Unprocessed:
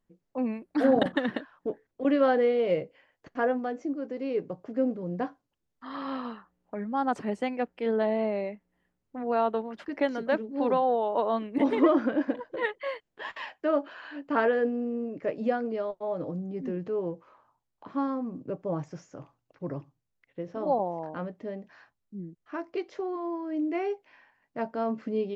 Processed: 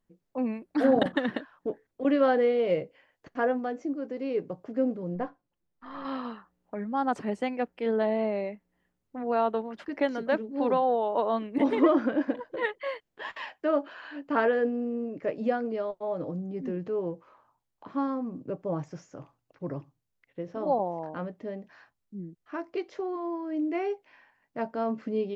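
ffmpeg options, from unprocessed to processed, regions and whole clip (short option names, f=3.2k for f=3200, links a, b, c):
-filter_complex "[0:a]asettb=1/sr,asplit=3[a][b][c];[a]atrim=end=5.154[d];[b]atrim=start=5.15:end=6.05,asetpts=PTS-STARTPTS,afade=t=in:d=0.004:c=qsin,afade=t=out:st=0.896:d=0.004:c=qsin,aeval=exprs='if(lt(val(0),0),0.708*val(0),val(0))':c=same,lowpass=f=1.9k:p=1,aecho=1:1:5.7:0.33,atrim=end_sample=39690[e];[c]atrim=start=6.046[f];[d][e]acrossfade=d=0.004:c1=hsin:c2=qsin[g];[g][f]acrossfade=d=0.004:c1=qsin:c2=hsin"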